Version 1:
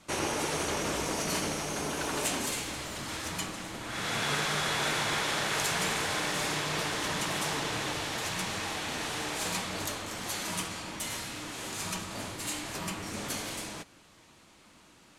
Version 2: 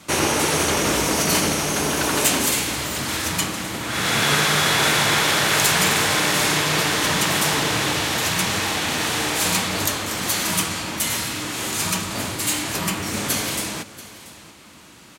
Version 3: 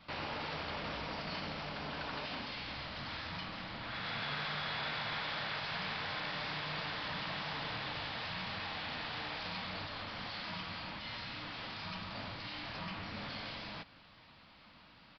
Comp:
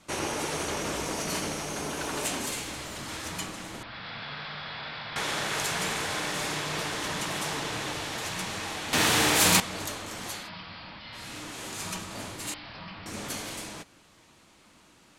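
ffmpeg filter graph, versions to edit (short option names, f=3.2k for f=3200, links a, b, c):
-filter_complex "[2:a]asplit=3[a][b][c];[0:a]asplit=5[d][e][f][g][h];[d]atrim=end=3.832[i];[a]atrim=start=3.828:end=5.162[j];[e]atrim=start=5.158:end=8.932[k];[1:a]atrim=start=8.928:end=9.602[l];[f]atrim=start=9.598:end=10.5[m];[b]atrim=start=10.26:end=11.36[n];[g]atrim=start=11.12:end=12.542[o];[c]atrim=start=12.538:end=13.062[p];[h]atrim=start=13.058[q];[i][j]acrossfade=d=0.004:c1=hsin:c2=hsin[r];[r][k]acrossfade=d=0.004:c1=hsin:c2=hsin[s];[s][l]acrossfade=d=0.004:c1=hsin:c2=hsin[t];[t][m]acrossfade=d=0.004:c1=hsin:c2=hsin[u];[u][n]acrossfade=d=0.24:c1=tri:c2=tri[v];[v][o]acrossfade=d=0.24:c1=tri:c2=tri[w];[w][p]acrossfade=d=0.004:c1=hsin:c2=hsin[x];[x][q]acrossfade=d=0.004:c1=hsin:c2=hsin"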